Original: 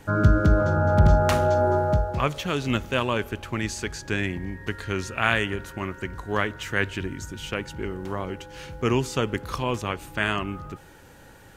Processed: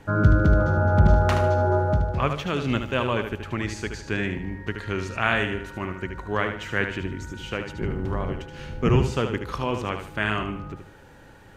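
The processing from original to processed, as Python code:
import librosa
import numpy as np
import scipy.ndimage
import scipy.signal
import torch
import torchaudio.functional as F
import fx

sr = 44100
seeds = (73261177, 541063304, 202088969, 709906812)

y = fx.octave_divider(x, sr, octaves=1, level_db=4.0, at=(7.79, 9.06))
y = fx.high_shelf(y, sr, hz=5900.0, db=-12.0)
y = fx.echo_feedback(y, sr, ms=75, feedback_pct=33, wet_db=-7.5)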